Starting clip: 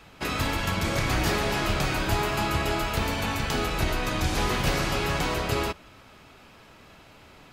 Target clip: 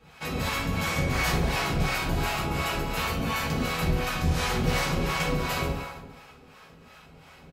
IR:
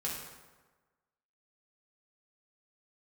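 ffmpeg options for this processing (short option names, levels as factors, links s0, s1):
-filter_complex "[0:a]aecho=1:1:461:0.0708[s0];[1:a]atrim=start_sample=2205[s1];[s0][s1]afir=irnorm=-1:irlink=0,acrossover=split=600[s2][s3];[s2]aeval=exprs='val(0)*(1-0.7/2+0.7/2*cos(2*PI*2.8*n/s))':c=same[s4];[s3]aeval=exprs='val(0)*(1-0.7/2-0.7/2*cos(2*PI*2.8*n/s))':c=same[s5];[s4][s5]amix=inputs=2:normalize=0"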